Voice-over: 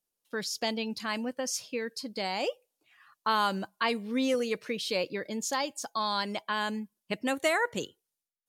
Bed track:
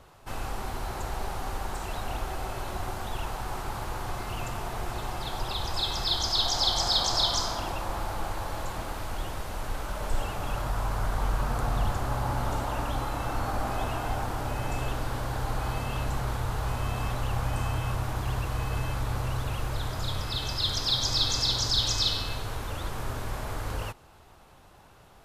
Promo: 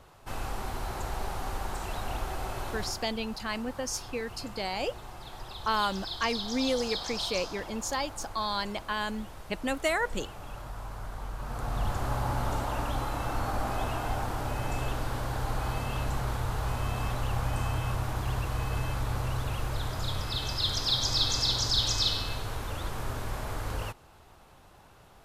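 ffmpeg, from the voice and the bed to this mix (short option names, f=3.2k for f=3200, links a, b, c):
-filter_complex "[0:a]adelay=2400,volume=-1dB[a];[1:a]volume=8.5dB,afade=t=out:st=2.67:d=0.44:silence=0.334965,afade=t=in:st=11.37:d=0.69:silence=0.334965[b];[a][b]amix=inputs=2:normalize=0"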